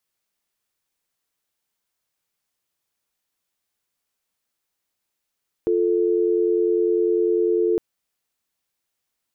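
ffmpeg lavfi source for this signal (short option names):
-f lavfi -i "aevalsrc='0.106*(sin(2*PI*350*t)+sin(2*PI*440*t))':d=2.11:s=44100"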